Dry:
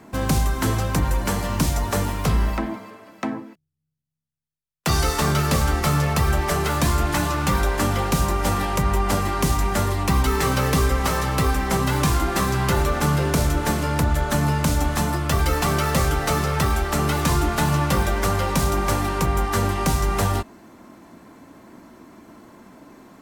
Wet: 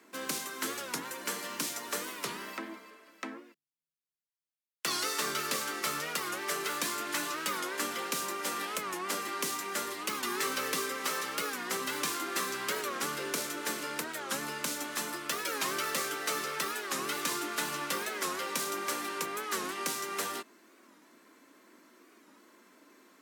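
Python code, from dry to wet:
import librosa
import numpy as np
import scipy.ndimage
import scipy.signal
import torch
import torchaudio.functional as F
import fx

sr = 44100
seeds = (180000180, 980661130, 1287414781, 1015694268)

y = scipy.signal.sosfilt(scipy.signal.bessel(4, 450.0, 'highpass', norm='mag', fs=sr, output='sos'), x)
y = fx.peak_eq(y, sr, hz=760.0, db=-12.0, octaves=0.94)
y = fx.record_warp(y, sr, rpm=45.0, depth_cents=160.0)
y = y * 10.0 ** (-5.5 / 20.0)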